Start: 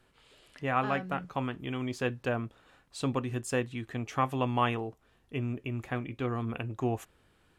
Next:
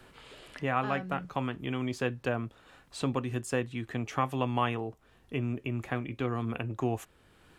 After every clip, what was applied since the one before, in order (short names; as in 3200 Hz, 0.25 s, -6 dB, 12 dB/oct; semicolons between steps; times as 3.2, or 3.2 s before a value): three-band squash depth 40%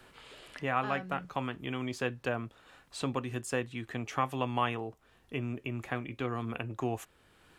low shelf 460 Hz -4.5 dB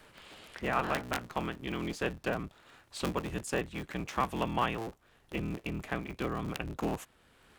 cycle switcher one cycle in 3, inverted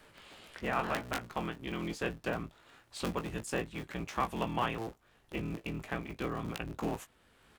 doubler 18 ms -8 dB; gain -2.5 dB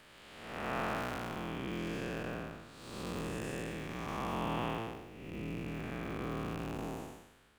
time blur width 0.372 s; gain +2 dB